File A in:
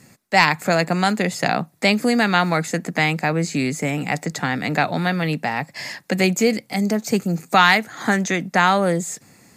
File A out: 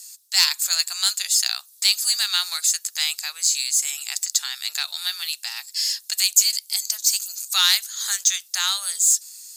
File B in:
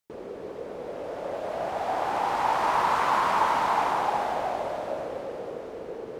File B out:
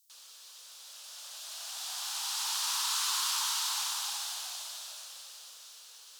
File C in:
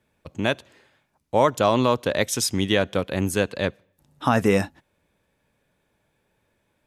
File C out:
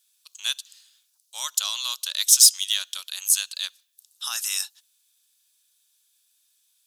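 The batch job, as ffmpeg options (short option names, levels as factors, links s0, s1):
-af "highpass=f=1200:w=0.5412,highpass=f=1200:w=1.3066,aexciter=amount=7.3:drive=9.5:freq=3200,volume=0.299"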